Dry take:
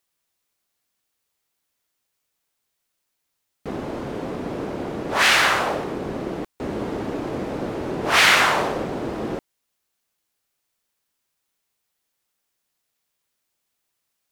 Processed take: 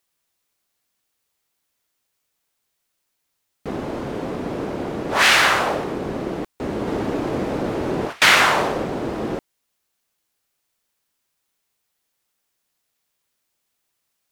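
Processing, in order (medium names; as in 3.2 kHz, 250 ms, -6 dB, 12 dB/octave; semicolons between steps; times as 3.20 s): 6.87–8.22 s: compressor with a negative ratio -26 dBFS, ratio -0.5; trim +2 dB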